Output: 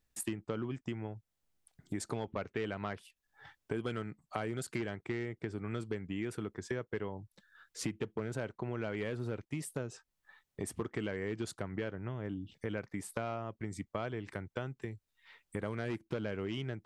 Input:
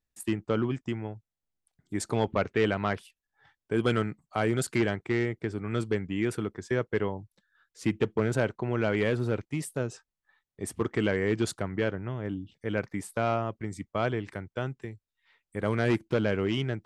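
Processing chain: compression 4:1, threshold -44 dBFS, peak gain reduction 19.5 dB; trim +6.5 dB

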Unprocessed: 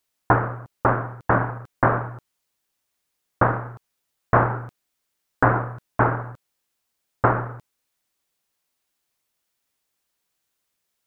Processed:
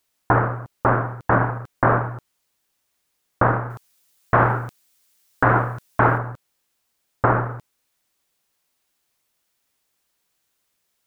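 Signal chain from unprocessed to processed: 3.70–6.18 s: treble shelf 2.6 kHz +10.5 dB; peak limiter -9.5 dBFS, peak gain reduction 7.5 dB; trim +4.5 dB

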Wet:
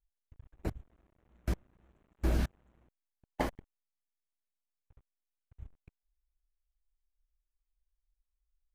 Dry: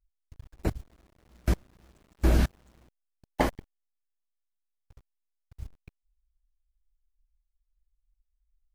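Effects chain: local Wiener filter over 9 samples; trim -7.5 dB

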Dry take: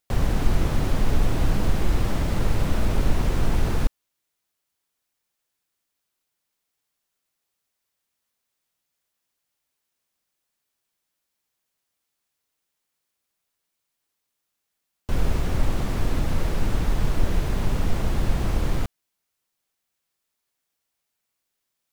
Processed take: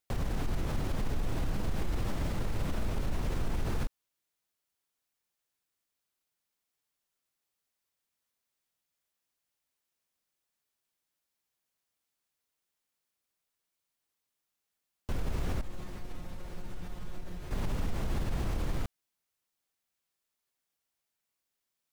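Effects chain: peak limiter -18 dBFS, peak gain reduction 11.5 dB; 15.61–17.51 s: feedback comb 180 Hz, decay 0.25 s, harmonics all, mix 80%; trim -5.5 dB

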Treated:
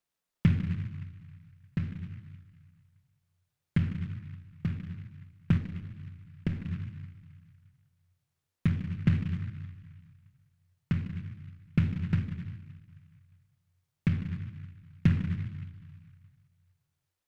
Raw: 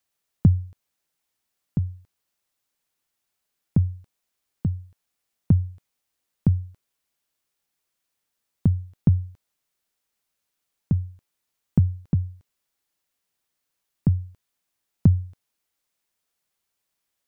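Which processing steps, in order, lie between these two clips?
simulated room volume 520 m³, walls mixed, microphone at 0.94 m; 5.57–6.66 s: dynamic bell 120 Hz, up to -7 dB, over -32 dBFS, Q 0.74; delay time shaken by noise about 1.8 kHz, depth 0.092 ms; trim -7.5 dB

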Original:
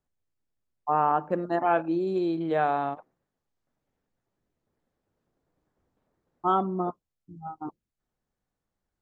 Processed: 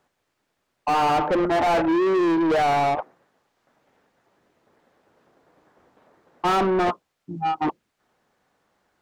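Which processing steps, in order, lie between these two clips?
dynamic bell 400 Hz, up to +4 dB, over -36 dBFS, Q 0.76; overdrive pedal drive 34 dB, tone 2.1 kHz, clips at -9.5 dBFS; trim -4 dB

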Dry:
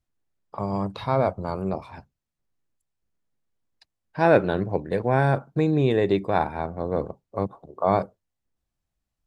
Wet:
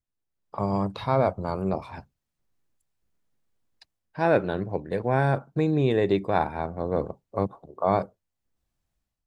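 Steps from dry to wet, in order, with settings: level rider gain up to 12 dB; trim -8.5 dB

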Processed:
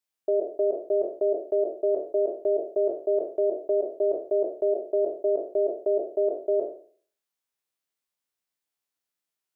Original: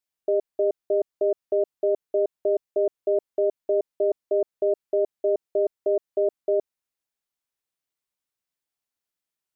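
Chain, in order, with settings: spectral sustain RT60 0.48 s; bass shelf 130 Hz -7.5 dB; trim -1 dB

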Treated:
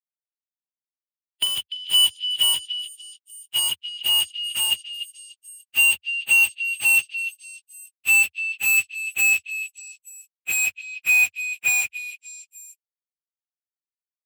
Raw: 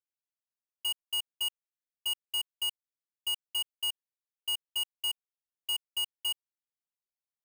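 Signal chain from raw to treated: gliding tape speed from 107% -> 81%; frequency weighting D; peak limiter -22 dBFS, peak gain reduction 6.5 dB; in parallel at -2 dB: compression 10:1, threshold -32 dBFS, peak gain reduction 8 dB; on the sum: short-mantissa float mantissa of 2-bit; fuzz box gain 51 dB, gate -53 dBFS; Chebyshev shaper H 3 -34 dB, 4 -30 dB, 5 -28 dB, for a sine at -11 dBFS; high-pass 86 Hz 24 dB/octave; plain phase-vocoder stretch 1.8×; repeats whose band climbs or falls 294 ms, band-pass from 3.5 kHz, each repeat 0.7 oct, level -9 dB

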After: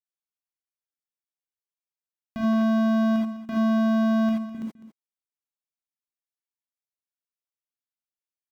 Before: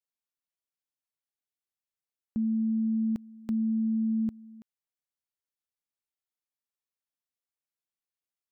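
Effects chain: 2.53–4.55 s: gate -38 dBFS, range -23 dB; waveshaping leveller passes 5; delay 204 ms -14.5 dB; gated-style reverb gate 100 ms rising, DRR -3.5 dB; trim -3.5 dB

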